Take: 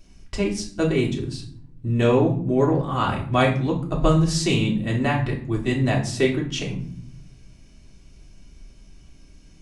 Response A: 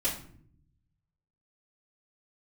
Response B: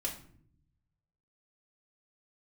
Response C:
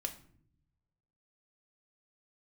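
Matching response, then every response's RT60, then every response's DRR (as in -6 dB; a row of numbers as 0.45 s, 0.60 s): B; no single decay rate, no single decay rate, no single decay rate; -12.5 dB, -3.5 dB, 3.5 dB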